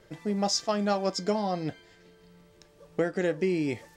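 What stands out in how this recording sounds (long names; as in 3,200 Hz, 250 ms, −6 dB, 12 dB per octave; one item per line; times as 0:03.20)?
background noise floor −59 dBFS
spectral slope −4.5 dB per octave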